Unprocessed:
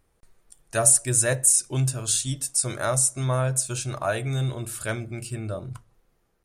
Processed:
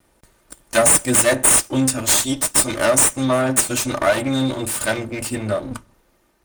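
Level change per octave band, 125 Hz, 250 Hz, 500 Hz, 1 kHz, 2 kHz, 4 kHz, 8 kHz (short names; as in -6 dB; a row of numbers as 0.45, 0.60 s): -2.0, +13.0, +9.5, +9.0, +10.0, +9.5, +5.0 dB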